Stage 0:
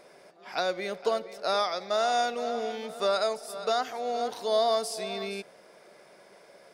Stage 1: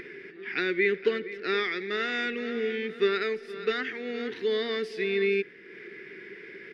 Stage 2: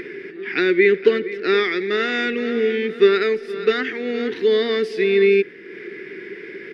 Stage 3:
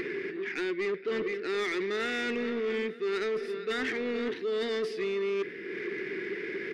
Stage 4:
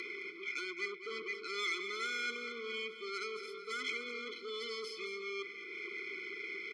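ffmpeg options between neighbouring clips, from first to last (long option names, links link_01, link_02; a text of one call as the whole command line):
ffmpeg -i in.wav -af "firequalizer=gain_entry='entry(190,0);entry(400,8);entry(590,-28);entry(1200,-12);entry(1800,11);entry(4100,-10);entry(8000,-29)':delay=0.05:min_phase=1,acompressor=mode=upward:threshold=-41dB:ratio=2.5,volume=4.5dB" out.wav
ffmpeg -i in.wav -af "equalizer=frequency=330:width=1.3:gain=5.5,volume=7dB" out.wav
ffmpeg -i in.wav -af "areverse,acompressor=threshold=-25dB:ratio=12,areverse,asoftclip=type=tanh:threshold=-26dB" out.wav
ffmpeg -i in.wav -filter_complex "[0:a]bandpass=frequency=4900:width_type=q:width=0.71:csg=0,asplit=2[link_01][link_02];[link_02]aecho=0:1:215:0.282[link_03];[link_01][link_03]amix=inputs=2:normalize=0,afftfilt=real='re*eq(mod(floor(b*sr/1024/500),2),0)':imag='im*eq(mod(floor(b*sr/1024/500),2),0)':win_size=1024:overlap=0.75,volume=4.5dB" out.wav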